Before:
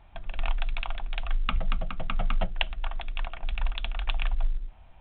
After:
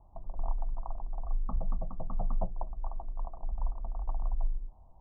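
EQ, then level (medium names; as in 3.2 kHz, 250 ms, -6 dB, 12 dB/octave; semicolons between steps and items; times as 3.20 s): steep low-pass 1.1 kHz 72 dB/octave; -4.0 dB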